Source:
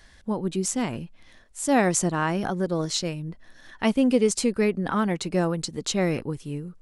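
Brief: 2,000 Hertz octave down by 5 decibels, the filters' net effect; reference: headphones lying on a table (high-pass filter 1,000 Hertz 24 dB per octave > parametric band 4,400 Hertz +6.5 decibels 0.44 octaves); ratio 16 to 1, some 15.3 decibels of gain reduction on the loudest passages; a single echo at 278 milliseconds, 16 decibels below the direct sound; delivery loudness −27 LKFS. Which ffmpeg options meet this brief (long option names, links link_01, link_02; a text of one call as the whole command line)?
ffmpeg -i in.wav -af "equalizer=frequency=2000:width_type=o:gain=-6.5,acompressor=threshold=-31dB:ratio=16,highpass=frequency=1000:width=0.5412,highpass=frequency=1000:width=1.3066,equalizer=frequency=4400:width_type=o:width=0.44:gain=6.5,aecho=1:1:278:0.158,volume=12dB" out.wav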